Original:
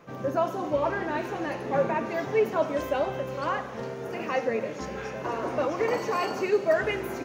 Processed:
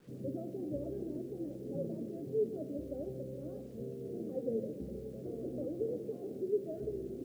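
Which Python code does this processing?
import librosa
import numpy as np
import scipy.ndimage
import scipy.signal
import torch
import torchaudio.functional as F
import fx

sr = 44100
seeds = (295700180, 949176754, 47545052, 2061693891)

y = fx.rider(x, sr, range_db=4, speed_s=2.0)
y = scipy.signal.sosfilt(scipy.signal.cheby2(4, 40, 910.0, 'lowpass', fs=sr, output='sos'), y)
y = fx.echo_feedback(y, sr, ms=134, feedback_pct=47, wet_db=-17.0)
y = fx.quant_dither(y, sr, seeds[0], bits=10, dither='none')
y = F.gain(torch.from_numpy(y), -6.5).numpy()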